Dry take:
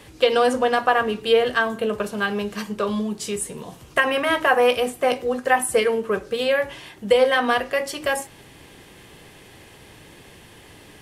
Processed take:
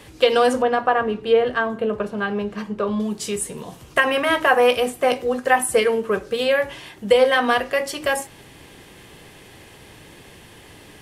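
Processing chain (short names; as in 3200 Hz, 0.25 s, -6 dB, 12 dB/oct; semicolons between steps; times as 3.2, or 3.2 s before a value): 0.62–3 LPF 1400 Hz 6 dB/oct; gain +1.5 dB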